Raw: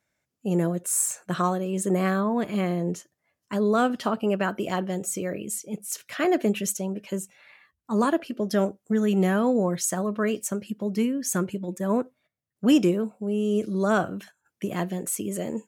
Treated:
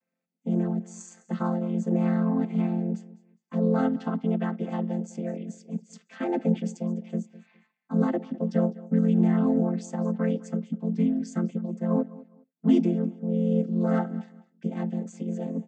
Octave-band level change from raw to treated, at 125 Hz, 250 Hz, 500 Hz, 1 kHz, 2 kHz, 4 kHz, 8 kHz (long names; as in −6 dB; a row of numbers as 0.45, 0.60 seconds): +2.0 dB, +0.5 dB, −5.0 dB, −7.5 dB, −11.0 dB, below −10 dB, below −15 dB